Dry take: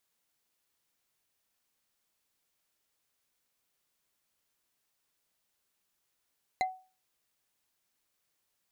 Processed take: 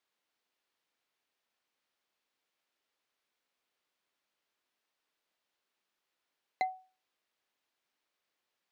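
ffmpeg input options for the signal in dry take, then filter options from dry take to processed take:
-f lavfi -i "aevalsrc='0.0668*pow(10,-3*t/0.35)*sin(2*PI*749*t)+0.0376*pow(10,-3*t/0.104)*sin(2*PI*2065*t)+0.0211*pow(10,-3*t/0.046)*sin(2*PI*4047.6*t)+0.0119*pow(10,-3*t/0.025)*sin(2*PI*6690.8*t)+0.00668*pow(10,-3*t/0.016)*sin(2*PI*9991.7*t)':d=0.45:s=44100"
-filter_complex "[0:a]acrossover=split=220 4800:gain=0.2 1 0.2[a][b][c];[a][b][c]amix=inputs=3:normalize=0"

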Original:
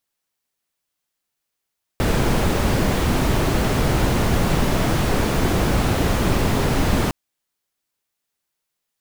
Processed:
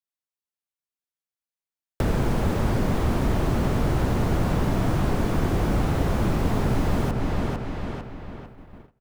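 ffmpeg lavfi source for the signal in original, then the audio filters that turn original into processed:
-f lavfi -i "anoisesrc=c=brown:a=0.589:d=5.11:r=44100:seed=1"
-filter_complex "[0:a]asplit=2[a][b];[b]adelay=450,lowpass=f=3.7k:p=1,volume=-6dB,asplit=2[c][d];[d]adelay=450,lowpass=f=3.7k:p=1,volume=0.46,asplit=2[e][f];[f]adelay=450,lowpass=f=3.7k:p=1,volume=0.46,asplit=2[g][h];[h]adelay=450,lowpass=f=3.7k:p=1,volume=0.46,asplit=2[i][j];[j]adelay=450,lowpass=f=3.7k:p=1,volume=0.46,asplit=2[k][l];[l]adelay=450,lowpass=f=3.7k:p=1,volume=0.46[m];[c][e][g][i][k][m]amix=inputs=6:normalize=0[n];[a][n]amix=inputs=2:normalize=0,agate=range=-18dB:threshold=-43dB:ratio=16:detection=peak,acrossover=split=240|1600[o][p][q];[o]acompressor=threshold=-20dB:ratio=4[r];[p]acompressor=threshold=-28dB:ratio=4[s];[q]acompressor=threshold=-43dB:ratio=4[t];[r][s][t]amix=inputs=3:normalize=0"

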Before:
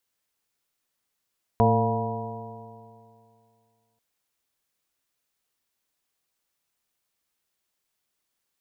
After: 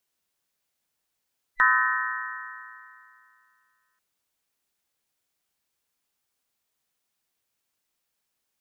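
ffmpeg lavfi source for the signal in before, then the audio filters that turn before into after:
-f lavfi -i "aevalsrc='0.0944*pow(10,-3*t/2.42)*sin(2*PI*111.16*t)+0.075*pow(10,-3*t/2.42)*sin(2*PI*223.24*t)+0.0141*pow(10,-3*t/2.42)*sin(2*PI*337.17*t)+0.0841*pow(10,-3*t/2.42)*sin(2*PI*453.84*t)+0.0266*pow(10,-3*t/2.42)*sin(2*PI*574.1*t)+0.0891*pow(10,-3*t/2.42)*sin(2*PI*698.76*t)+0.0224*pow(10,-3*t/2.42)*sin(2*PI*828.59*t)+0.075*pow(10,-3*t/2.42)*sin(2*PI*964.29*t)':d=2.39:s=44100"
-af "afftfilt=real='real(if(between(b,1,1012),(2*floor((b-1)/92)+1)*92-b,b),0)':imag='imag(if(between(b,1,1012),(2*floor((b-1)/92)+1)*92-b,b),0)*if(between(b,1,1012),-1,1)':win_size=2048:overlap=0.75"

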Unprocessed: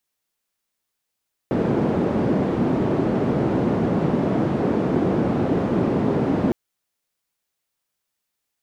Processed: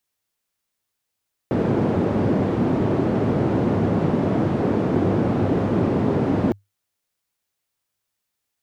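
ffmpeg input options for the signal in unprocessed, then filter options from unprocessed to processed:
-f lavfi -i "anoisesrc=c=white:d=5.01:r=44100:seed=1,highpass=f=160,lowpass=f=300,volume=5.4dB"
-af "equalizer=f=100:t=o:w=0.26:g=10"

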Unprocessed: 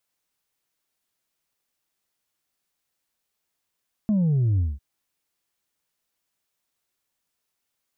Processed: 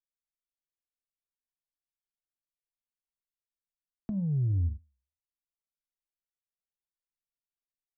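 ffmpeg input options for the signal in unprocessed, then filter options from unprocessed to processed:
-f lavfi -i "aevalsrc='0.119*clip((0.7-t)/0.2,0,1)*tanh(1.26*sin(2*PI*220*0.7/log(65/220)*(exp(log(65/220)*t/0.7)-1)))/tanh(1.26)':d=0.7:s=44100"
-filter_complex "[0:a]acrossover=split=160[a][b];[b]acompressor=threshold=-34dB:ratio=6[c];[a][c]amix=inputs=2:normalize=0,anlmdn=0.00631,flanger=delay=9.7:depth=6.5:regen=81:speed=1.9:shape=triangular"

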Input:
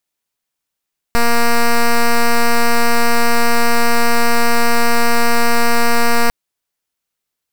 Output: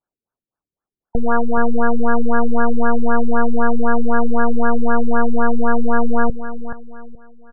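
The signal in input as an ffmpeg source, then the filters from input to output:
-f lavfi -i "aevalsrc='0.299*(2*lt(mod(235*t,1),0.07)-1)':d=5.15:s=44100"
-filter_complex "[0:a]equalizer=f=2.3k:t=o:w=0.69:g=9,asplit=2[a][b];[b]aecho=0:1:426|852|1278|1704:0.266|0.0931|0.0326|0.0114[c];[a][c]amix=inputs=2:normalize=0,afftfilt=real='re*lt(b*sr/1024,410*pow(1800/410,0.5+0.5*sin(2*PI*3.9*pts/sr)))':imag='im*lt(b*sr/1024,410*pow(1800/410,0.5+0.5*sin(2*PI*3.9*pts/sr)))':win_size=1024:overlap=0.75"

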